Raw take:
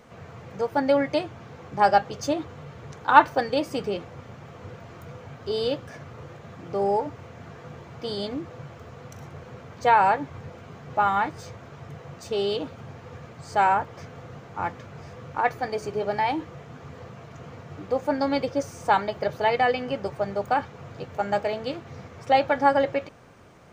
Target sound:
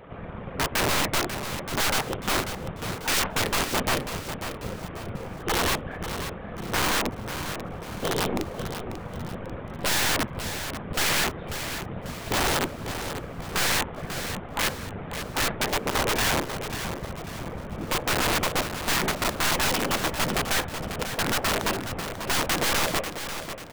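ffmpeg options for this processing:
ffmpeg -i in.wav -filter_complex "[0:a]afftfilt=real='hypot(re,im)*cos(2*PI*random(0))':imag='hypot(re,im)*sin(2*PI*random(1))':win_size=512:overlap=0.75,aresample=8000,aeval=exprs='0.447*sin(PI/2*3.98*val(0)/0.447)':channel_layout=same,aresample=44100,aeval=exprs='(tanh(8.91*val(0)+0.75)-tanh(0.75))/8.91':channel_layout=same,lowpass=frequency=2700:poles=1,aeval=exprs='(mod(7.5*val(0)+1,2)-1)/7.5':channel_layout=same,asplit=2[link_01][link_02];[link_02]aecho=0:1:542|1084|1626|2168:0.335|0.137|0.0563|0.0231[link_03];[link_01][link_03]amix=inputs=2:normalize=0" out.wav

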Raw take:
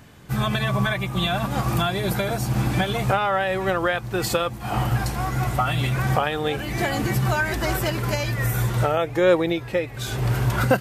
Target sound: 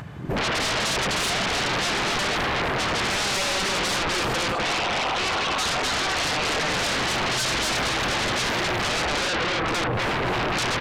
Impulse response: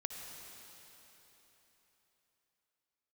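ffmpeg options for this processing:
-filter_complex "[0:a]flanger=delay=6.3:depth=5.3:regen=-86:speed=0.26:shape=triangular,acompressor=threshold=-31dB:ratio=4,highshelf=frequency=2000:gain=-4.5,aecho=1:1:72.89|250.7:0.355|0.708,afwtdn=0.01,asettb=1/sr,asplit=3[link_01][link_02][link_03];[link_01]atrim=end=4.524[link_04];[link_02]atrim=start=4.52:end=6.69,asetpts=PTS-STARTPTS,afade=type=in:duration=0.004:curve=qsin,afade=type=out:start_time=2.166:duration=0.004:curve=qsin,highpass=690,lowpass=7000[link_05];[link_03]atrim=start=6.686[link_06];[link_04][link_05]acrossfade=duration=0.004:curve1=hsin:curve2=qsin[link_07];[link_07][link_06]acrossfade=duration=0.004:curve1=qsin:curve2=hsin,asplit=2[link_08][link_09];[link_09]highpass=frequency=720:poles=1,volume=20dB,asoftclip=type=tanh:threshold=-20.5dB[link_10];[link_08][link_10]amix=inputs=2:normalize=0,lowpass=frequency=1600:poles=1,volume=-6dB,aeval=exprs='0.0944*sin(PI/2*5.62*val(0)/0.0944)':channel_layout=same,acompressor=mode=upward:threshold=-36dB:ratio=2.5,volume=-1dB"

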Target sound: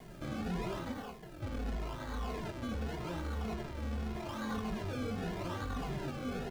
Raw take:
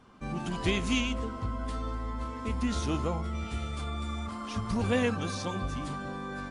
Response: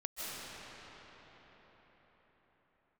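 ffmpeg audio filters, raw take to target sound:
-filter_complex "[0:a]acompressor=threshold=-30dB:ratio=6,asoftclip=type=hard:threshold=-39dB,asplit=3[link_01][link_02][link_03];[link_01]afade=type=out:start_time=0.91:duration=0.02[link_04];[link_02]bandpass=frequency=5000:width_type=q:width=0.61:csg=0,afade=type=in:start_time=0.91:duration=0.02,afade=type=out:start_time=1.41:duration=0.02[link_05];[link_03]afade=type=in:start_time=1.41:duration=0.02[link_06];[link_04][link_05][link_06]amix=inputs=3:normalize=0,acrusher=samples=32:mix=1:aa=0.000001:lfo=1:lforange=32:lforate=0.84,asoftclip=type=tanh:threshold=-38.5dB,adynamicsmooth=sensitivity=6.5:basefreq=4200,acrusher=bits=9:mix=0:aa=0.000001,asplit=2[link_07][link_08];[link_08]adelay=23,volume=-10.5dB[link_09];[link_07][link_09]amix=inputs=2:normalize=0,asplit=2[link_10][link_11];[link_11]adelay=2.4,afreqshift=-1.7[link_12];[link_10][link_12]amix=inputs=2:normalize=1,volume=8.5dB"

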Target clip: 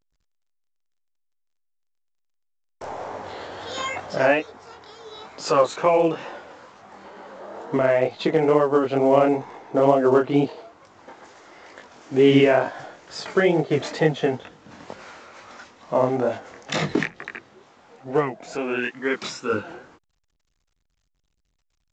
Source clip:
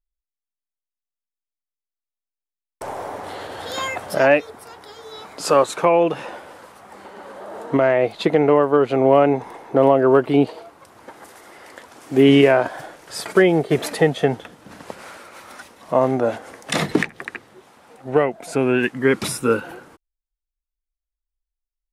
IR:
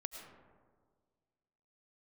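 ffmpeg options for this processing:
-filter_complex "[0:a]asettb=1/sr,asplit=3[link_01][link_02][link_03];[link_01]atrim=end=18.554[link_04];[link_02]atrim=start=18.55:end=19.53,asetpts=PTS-STARTPTS,afade=type=in:duration=0.004:curve=qsin,afade=type=out:start_time=0.976:duration=0.004:curve=qsin,highpass=frequency=570:poles=1[link_05];[link_03]atrim=start=19.526[link_06];[link_04][link_05]acrossfade=duration=0.004:curve1=hsin:curve2=qsin[link_07];[link_07][link_06]acrossfade=duration=0.004:curve1=qsin:curve2=hsin,flanger=delay=19:depth=6.4:speed=2.2" -ar 16000 -c:a pcm_alaw

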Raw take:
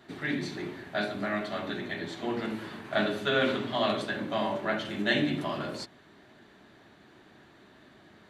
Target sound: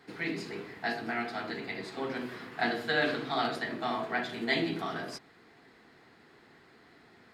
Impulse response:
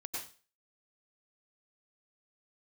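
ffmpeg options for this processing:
-af "asetrate=49833,aresample=44100,equalizer=frequency=1500:width=2.1:gain=4.5,volume=-3.5dB"

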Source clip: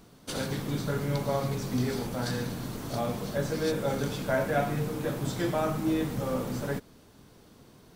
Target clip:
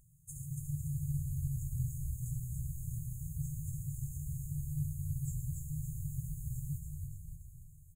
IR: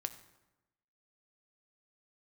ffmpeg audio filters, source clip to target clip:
-filter_complex "[0:a]asplit=8[link_01][link_02][link_03][link_04][link_05][link_06][link_07][link_08];[link_02]adelay=284,afreqshift=-55,volume=-4dB[link_09];[link_03]adelay=568,afreqshift=-110,volume=-9.2dB[link_10];[link_04]adelay=852,afreqshift=-165,volume=-14.4dB[link_11];[link_05]adelay=1136,afreqshift=-220,volume=-19.6dB[link_12];[link_06]adelay=1420,afreqshift=-275,volume=-24.8dB[link_13];[link_07]adelay=1704,afreqshift=-330,volume=-30dB[link_14];[link_08]adelay=1988,afreqshift=-385,volume=-35.2dB[link_15];[link_01][link_09][link_10][link_11][link_12][link_13][link_14][link_15]amix=inputs=8:normalize=0,afftfilt=real='re*(1-between(b*sr/4096,170,6400))':imag='im*(1-between(b*sr/4096,170,6400))':win_size=4096:overlap=0.75,volume=-4.5dB"

